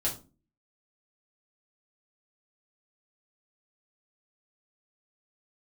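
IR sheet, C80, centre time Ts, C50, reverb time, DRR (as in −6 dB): 17.0 dB, 19 ms, 11.0 dB, 0.35 s, −6.0 dB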